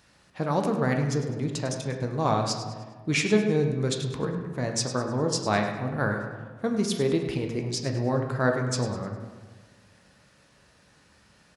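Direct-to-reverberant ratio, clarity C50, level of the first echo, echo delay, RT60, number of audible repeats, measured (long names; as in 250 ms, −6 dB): 3.0 dB, 5.5 dB, −12.5 dB, 102 ms, 1.5 s, 2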